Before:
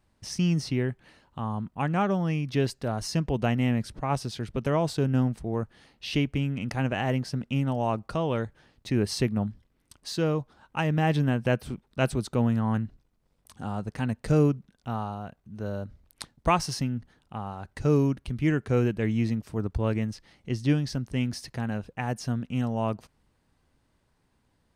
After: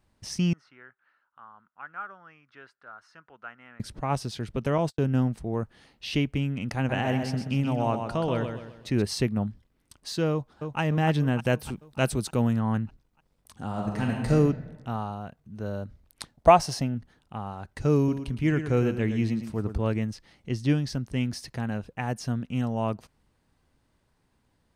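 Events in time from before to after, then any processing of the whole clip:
0.53–3.80 s: band-pass filter 1.4 kHz, Q 6.6
4.78–5.18 s: gate -32 dBFS, range -43 dB
6.76–9.02 s: feedback delay 128 ms, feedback 40%, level -6.5 dB
10.31–10.80 s: echo throw 300 ms, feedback 60%, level -6 dB
11.39–12.53 s: treble shelf 5.8 kHz +9 dB
13.67–14.31 s: reverb throw, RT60 1.3 s, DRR -1 dB
16.34–16.95 s: peaking EQ 670 Hz +12 dB 0.72 oct
17.97–19.87 s: feedback delay 112 ms, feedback 30%, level -9.5 dB

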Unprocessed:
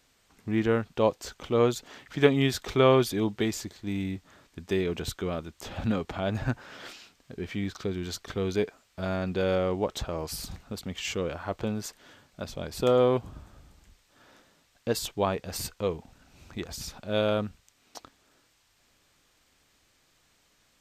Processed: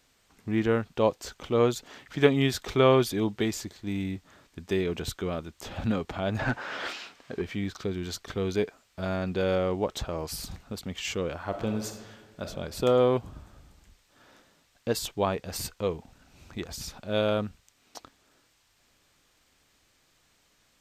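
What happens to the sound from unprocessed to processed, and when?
6.39–7.42 s: overdrive pedal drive 20 dB, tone 1.9 kHz, clips at -16.5 dBFS
11.46–12.44 s: reverb throw, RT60 1.4 s, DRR 5 dB

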